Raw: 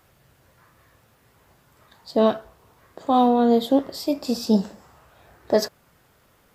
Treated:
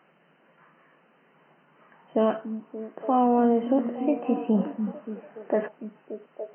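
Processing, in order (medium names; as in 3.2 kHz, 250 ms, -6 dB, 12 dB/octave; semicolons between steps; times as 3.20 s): repeats whose band climbs or falls 288 ms, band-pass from 200 Hz, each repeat 0.7 oct, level -10 dB; peak limiter -13 dBFS, peak gain reduction 7.5 dB; FFT band-pass 140–3100 Hz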